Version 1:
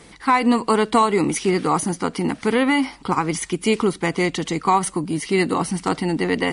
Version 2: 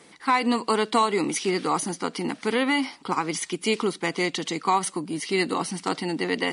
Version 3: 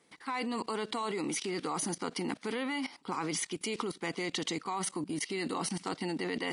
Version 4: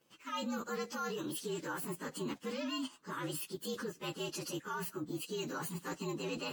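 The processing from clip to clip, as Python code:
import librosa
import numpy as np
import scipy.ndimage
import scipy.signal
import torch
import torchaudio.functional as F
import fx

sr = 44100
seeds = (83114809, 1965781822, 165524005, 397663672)

y1 = scipy.signal.sosfilt(scipy.signal.butter(2, 200.0, 'highpass', fs=sr, output='sos'), x)
y1 = fx.dynamic_eq(y1, sr, hz=4200.0, q=0.89, threshold_db=-41.0, ratio=4.0, max_db=6)
y1 = F.gain(torch.from_numpy(y1), -5.0).numpy()
y2 = fx.level_steps(y1, sr, step_db=17)
y3 = fx.partial_stretch(y2, sr, pct=116)
y3 = F.gain(torch.from_numpy(y3), -1.5).numpy()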